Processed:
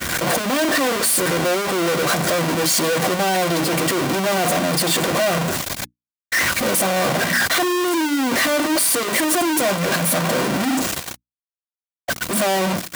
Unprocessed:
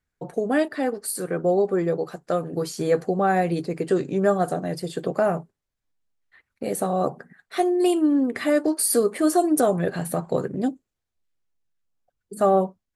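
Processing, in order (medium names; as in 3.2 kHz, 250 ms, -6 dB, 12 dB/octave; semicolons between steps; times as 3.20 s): one-bit comparator; high-pass 230 Hz 6 dB/octave; hum notches 60/120/180/240/300 Hz; comb of notches 430 Hz; expander -26 dBFS; trim +8 dB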